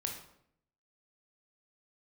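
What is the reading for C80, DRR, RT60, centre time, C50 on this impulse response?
9.5 dB, 1.5 dB, 0.70 s, 28 ms, 5.5 dB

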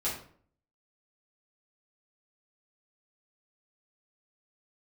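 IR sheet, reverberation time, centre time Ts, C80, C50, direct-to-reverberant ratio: 0.55 s, 35 ms, 9.5 dB, 5.5 dB, -8.5 dB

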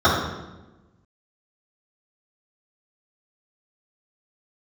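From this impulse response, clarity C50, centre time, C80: 1.5 dB, 59 ms, 4.5 dB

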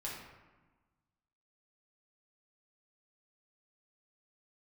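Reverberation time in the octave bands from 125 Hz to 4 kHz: 1.7, 1.6, 1.2, 1.3, 1.1, 0.70 s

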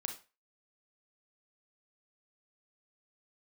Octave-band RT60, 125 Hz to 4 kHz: 0.30, 0.25, 0.30, 0.30, 0.30, 0.25 s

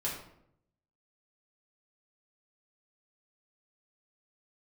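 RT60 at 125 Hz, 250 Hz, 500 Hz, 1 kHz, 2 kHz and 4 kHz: 1.0, 0.85, 0.80, 0.65, 0.55, 0.45 s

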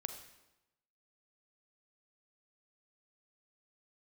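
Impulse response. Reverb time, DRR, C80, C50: 0.95 s, 6.5 dB, 10.0 dB, 8.0 dB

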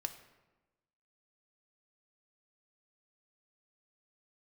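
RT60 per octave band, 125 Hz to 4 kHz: 1.2, 1.3, 1.2, 1.1, 0.95, 0.70 s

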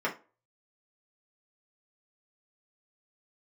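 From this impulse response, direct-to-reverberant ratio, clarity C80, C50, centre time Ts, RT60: -4.0 dB, 20.0 dB, 13.0 dB, 15 ms, 0.35 s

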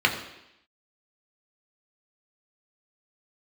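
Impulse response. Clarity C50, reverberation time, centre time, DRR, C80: 8.5 dB, 0.85 s, 21 ms, 1.0 dB, 10.5 dB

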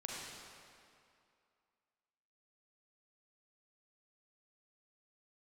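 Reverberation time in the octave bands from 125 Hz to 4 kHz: 2.1, 2.3, 2.4, 2.5, 2.2, 1.9 s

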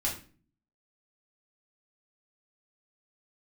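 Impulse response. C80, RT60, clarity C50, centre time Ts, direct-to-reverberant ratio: 13.0 dB, 0.40 s, 8.0 dB, 25 ms, -4.5 dB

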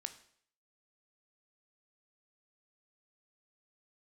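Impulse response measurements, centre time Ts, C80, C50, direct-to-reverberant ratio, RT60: 7 ms, 16.5 dB, 13.5 dB, 8.5 dB, 0.60 s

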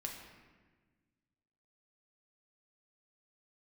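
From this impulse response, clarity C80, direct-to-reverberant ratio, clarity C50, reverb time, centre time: 6.0 dB, 0.0 dB, 4.0 dB, 1.4 s, 49 ms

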